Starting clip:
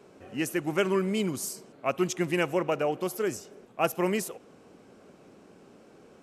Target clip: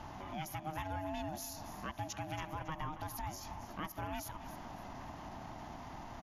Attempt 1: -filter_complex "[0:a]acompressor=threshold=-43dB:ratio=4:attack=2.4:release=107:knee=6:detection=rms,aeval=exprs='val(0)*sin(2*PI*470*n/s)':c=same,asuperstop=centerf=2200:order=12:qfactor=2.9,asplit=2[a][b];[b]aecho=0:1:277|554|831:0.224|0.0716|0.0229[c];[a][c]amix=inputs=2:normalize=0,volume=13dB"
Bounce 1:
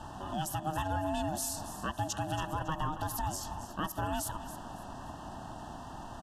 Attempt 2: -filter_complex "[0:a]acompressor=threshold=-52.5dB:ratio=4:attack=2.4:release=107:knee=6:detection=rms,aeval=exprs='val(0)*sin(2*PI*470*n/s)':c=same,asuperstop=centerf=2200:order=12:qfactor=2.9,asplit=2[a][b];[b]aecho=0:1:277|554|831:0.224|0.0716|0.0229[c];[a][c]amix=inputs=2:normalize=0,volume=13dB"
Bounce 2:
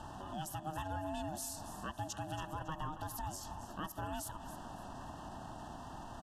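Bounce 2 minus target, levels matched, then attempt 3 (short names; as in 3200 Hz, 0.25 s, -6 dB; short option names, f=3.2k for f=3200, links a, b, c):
8000 Hz band +3.0 dB
-filter_complex "[0:a]acompressor=threshold=-52.5dB:ratio=4:attack=2.4:release=107:knee=6:detection=rms,aeval=exprs='val(0)*sin(2*PI*470*n/s)':c=same,asuperstop=centerf=8500:order=12:qfactor=2.9,asplit=2[a][b];[b]aecho=0:1:277|554|831:0.224|0.0716|0.0229[c];[a][c]amix=inputs=2:normalize=0,volume=13dB"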